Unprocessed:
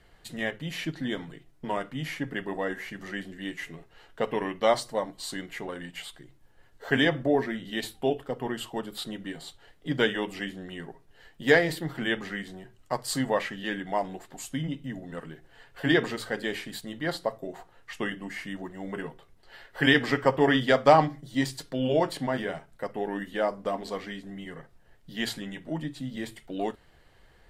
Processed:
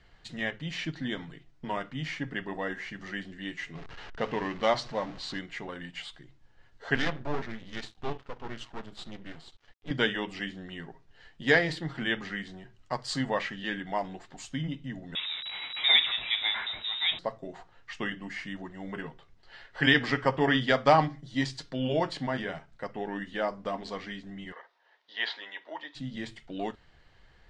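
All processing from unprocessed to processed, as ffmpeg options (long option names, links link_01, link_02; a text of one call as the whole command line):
ffmpeg -i in.wav -filter_complex "[0:a]asettb=1/sr,asplit=3[link_01][link_02][link_03];[link_01]atrim=end=3.754[link_04];[link_02]atrim=start=3.75:end=5.39,asetpts=PTS-STARTPTS,afade=type=in:duration=0.004:curve=qsin,afade=type=out:start_time=1.636:duration=0.004:curve=qsin,aeval=exprs='val(0)+0.5*0.0133*sgn(val(0))':channel_layout=same,adynamicsmooth=sensitivity=4.5:basefreq=3700[link_05];[link_03]atrim=start=5.386[link_06];[link_04][link_05]acrossfade=duration=0.004:curve1=hsin:curve2=qsin[link_07];[link_07][link_06]acrossfade=duration=0.004:curve1=qsin:curve2=hsin,asettb=1/sr,asplit=3[link_08][link_09][link_10];[link_08]atrim=end=6.954[link_11];[link_09]atrim=start=6.95:end=9.91,asetpts=PTS-STARTPTS,afade=type=in:duration=0.004:curve=qsin,afade=type=out:start_time=2.956:duration=0.004:curve=qsin,highshelf=frequency=4400:gain=-4.5,aeval=exprs='max(val(0),0)':channel_layout=same[link_12];[link_10]atrim=start=9.906[link_13];[link_11][link_12]acrossfade=duration=0.004:curve1=hsin:curve2=qsin[link_14];[link_14][link_13]acrossfade=duration=0.004:curve1=qsin:curve2=hsin,asettb=1/sr,asplit=3[link_15][link_16][link_17];[link_15]atrim=end=15.154[link_18];[link_16]atrim=start=15.15:end=17.19,asetpts=PTS-STARTPTS,afade=type=in:duration=0.004:curve=qsin,afade=type=out:start_time=2.036:duration=0.004:curve=qsin,aeval=exprs='val(0)+0.5*0.0237*sgn(val(0))':channel_layout=same,lowpass=frequency=3300:width_type=q:width=0.5098,lowpass=frequency=3300:width_type=q:width=0.6013,lowpass=frequency=3300:width_type=q:width=0.9,lowpass=frequency=3300:width_type=q:width=2.563,afreqshift=-3900[link_19];[link_17]atrim=start=17.186[link_20];[link_18][link_19]acrossfade=duration=0.004:curve1=hsin:curve2=qsin[link_21];[link_21][link_20]acrossfade=duration=0.004:curve1=qsin:curve2=hsin,asettb=1/sr,asplit=3[link_22][link_23][link_24];[link_22]atrim=end=24.524[link_25];[link_23]atrim=start=24.52:end=25.95,asetpts=PTS-STARTPTS,afade=type=in:duration=0.004:curve=qsin,afade=type=out:start_time=1.426:duration=0.004:curve=qsin,acrossover=split=4400[link_26][link_27];[link_27]acompressor=threshold=-59dB:ratio=4:attack=1:release=60[link_28];[link_26][link_28]amix=inputs=2:normalize=0,highpass=frequency=450:width=0.5412,highpass=frequency=450:width=1.3066,equalizer=frequency=970:width_type=q:width=4:gain=9,equalizer=frequency=1900:width_type=q:width=4:gain=4,equalizer=frequency=3600:width_type=q:width=4:gain=5,lowpass=frequency=5700:width=0.5412,lowpass=frequency=5700:width=1.3066[link_29];[link_24]atrim=start=25.946[link_30];[link_25][link_29]acrossfade=duration=0.004:curve1=hsin:curve2=qsin[link_31];[link_31][link_30]acrossfade=duration=0.004:curve1=qsin:curve2=hsin,lowpass=frequency=6400:width=0.5412,lowpass=frequency=6400:width=1.3066,equalizer=frequency=450:width=0.8:gain=-5" out.wav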